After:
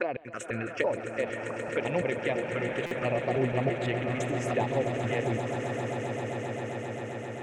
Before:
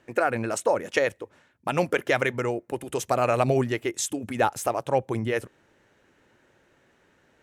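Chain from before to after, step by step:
slices reordered back to front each 168 ms, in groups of 2
tilt shelving filter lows −4.5 dB, about 1,500 Hz
low-pass that shuts in the quiet parts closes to 1,500 Hz, open at −24.5 dBFS
high-shelf EQ 5,800 Hz −10 dB
notch filter 790 Hz, Q 12
on a send: feedback delay with all-pass diffusion 552 ms, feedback 45%, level −11 dB
on the sum: phaser swept by the level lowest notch 410 Hz, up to 1,400 Hz, full sweep at −23.5 dBFS
treble cut that deepens with the level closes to 1,700 Hz, closed at −25.5 dBFS
echo that builds up and dies away 132 ms, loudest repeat 8, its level −12 dB
buffer that repeats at 0:02.86, samples 256, times 8

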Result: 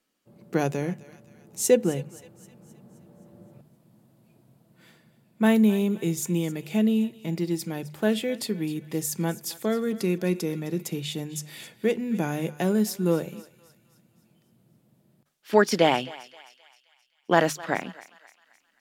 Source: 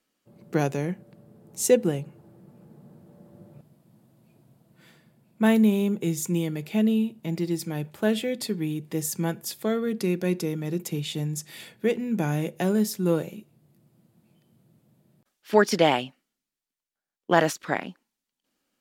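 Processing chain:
mains-hum notches 50/100/150 Hz
feedback echo with a high-pass in the loop 262 ms, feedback 52%, high-pass 910 Hz, level −16.5 dB

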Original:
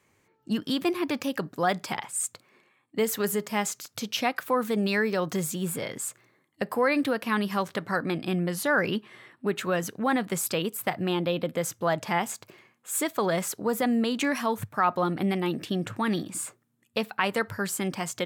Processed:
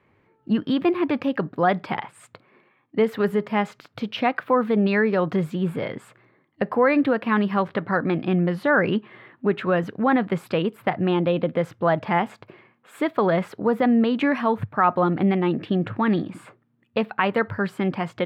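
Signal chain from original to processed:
high-frequency loss of the air 430 metres
level +7 dB

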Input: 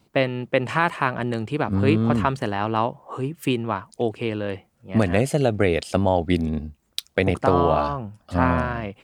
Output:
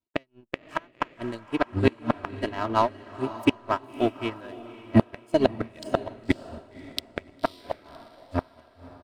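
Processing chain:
fade-out on the ending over 0.85 s
reverb reduction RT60 1 s
comb filter 3.1 ms, depth 91%
in parallel at −7.5 dB: slack as between gear wheels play −21.5 dBFS
on the sum: power curve on the samples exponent 1.4
gate with flip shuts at −7 dBFS, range −28 dB
on a send: feedback delay with all-pass diffusion 555 ms, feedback 46%, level −9 dB
on the sum: expander for the loud parts 1.5 to 1, over −43 dBFS
level +3.5 dB

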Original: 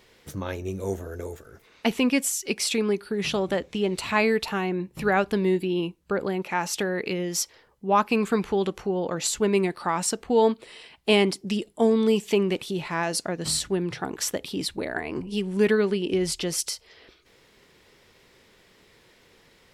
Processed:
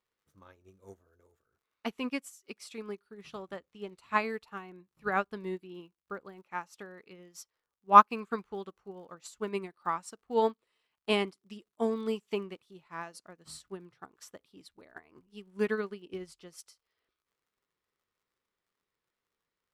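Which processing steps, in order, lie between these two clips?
surface crackle 78 per second −37 dBFS
parametric band 1,200 Hz +9 dB 0.66 octaves
expander for the loud parts 2.5 to 1, over −33 dBFS

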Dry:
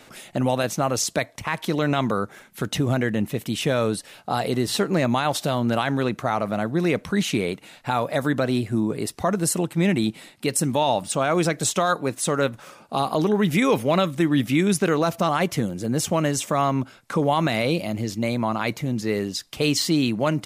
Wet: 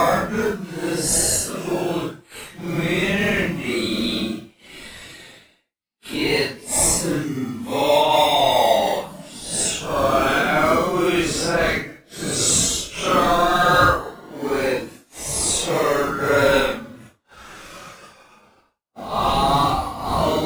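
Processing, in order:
meter weighting curve A
in parallel at −6.5 dB: sample-and-hold swept by an LFO 40×, swing 60% 0.63 Hz
on the sum: extreme stretch with random phases 5.2×, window 0.05 s, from 0:09.26
downward expander −41 dBFS
level +4 dB

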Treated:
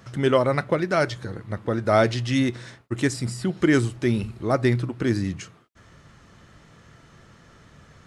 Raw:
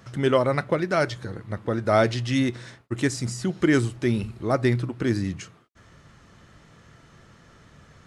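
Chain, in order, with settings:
0:03.13–0:03.57: parametric band 6,300 Hz −13.5 dB 0.21 octaves
level +1 dB

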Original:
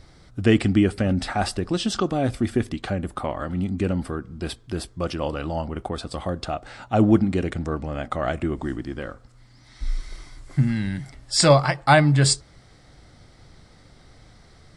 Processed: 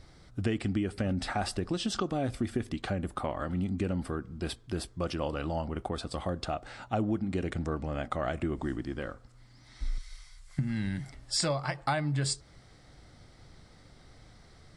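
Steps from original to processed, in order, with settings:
0:09.98–0:10.59: guitar amp tone stack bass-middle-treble 10-0-10
downward compressor 8 to 1, threshold −22 dBFS, peak gain reduction 13 dB
level −4.5 dB

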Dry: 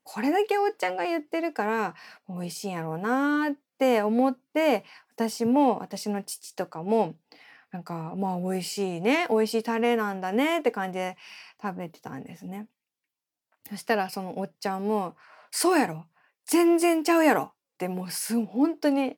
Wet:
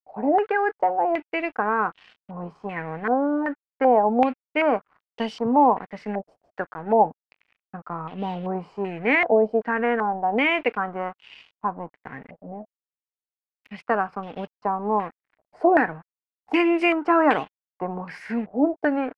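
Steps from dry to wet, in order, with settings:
dead-zone distortion −46 dBFS
low-pass on a step sequencer 2.6 Hz 660–3,100 Hz

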